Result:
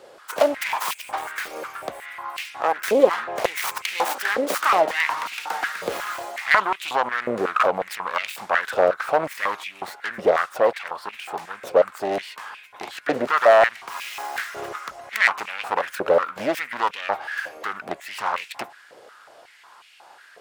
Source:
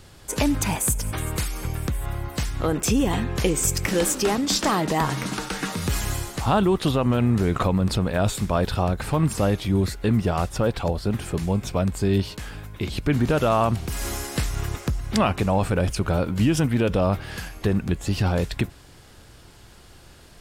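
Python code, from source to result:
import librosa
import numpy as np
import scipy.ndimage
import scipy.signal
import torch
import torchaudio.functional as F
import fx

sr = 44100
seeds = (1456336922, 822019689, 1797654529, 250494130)

y = fx.self_delay(x, sr, depth_ms=0.48)
y = fx.high_shelf(y, sr, hz=2400.0, db=-10.0)
y = fx.filter_held_highpass(y, sr, hz=5.5, low_hz=520.0, high_hz=2500.0)
y = y * librosa.db_to_amplitude(3.5)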